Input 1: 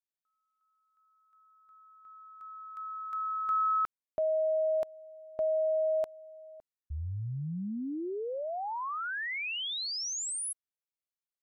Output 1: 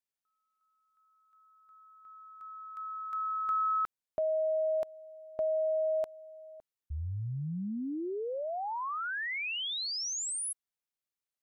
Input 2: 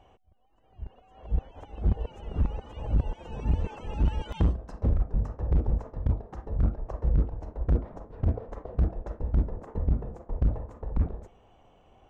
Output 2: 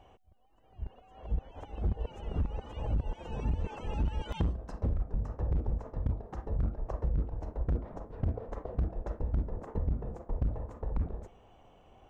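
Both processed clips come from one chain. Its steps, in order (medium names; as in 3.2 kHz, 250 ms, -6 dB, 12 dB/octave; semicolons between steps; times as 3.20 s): compression, threshold -27 dBFS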